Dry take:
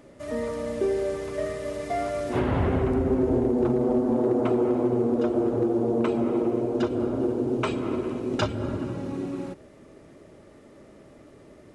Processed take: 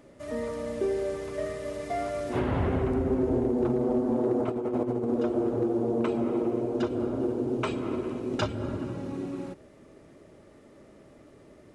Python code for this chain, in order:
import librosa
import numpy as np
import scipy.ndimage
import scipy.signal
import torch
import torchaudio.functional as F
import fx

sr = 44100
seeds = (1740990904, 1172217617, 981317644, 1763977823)

y = fx.over_compress(x, sr, threshold_db=-25.0, ratio=-0.5, at=(4.4, 5.11))
y = y * librosa.db_to_amplitude(-3.0)